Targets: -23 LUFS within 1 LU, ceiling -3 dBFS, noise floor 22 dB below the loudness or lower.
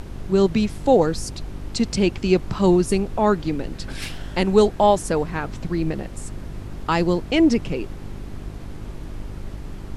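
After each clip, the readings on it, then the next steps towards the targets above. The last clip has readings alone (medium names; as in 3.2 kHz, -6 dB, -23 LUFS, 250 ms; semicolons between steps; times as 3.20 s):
hum 50 Hz; highest harmonic 400 Hz; hum level -34 dBFS; noise floor -36 dBFS; noise floor target -43 dBFS; loudness -21.0 LUFS; peak level -4.0 dBFS; loudness target -23.0 LUFS
-> de-hum 50 Hz, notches 8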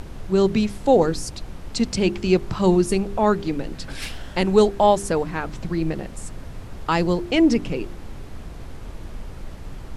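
hum not found; noise floor -37 dBFS; noise floor target -44 dBFS
-> noise print and reduce 7 dB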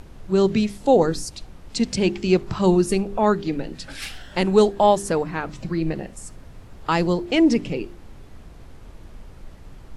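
noise floor -44 dBFS; loudness -21.0 LUFS; peak level -4.0 dBFS; loudness target -23.0 LUFS
-> trim -2 dB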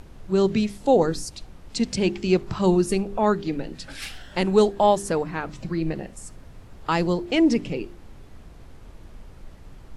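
loudness -23.0 LUFS; peak level -6.0 dBFS; noise floor -46 dBFS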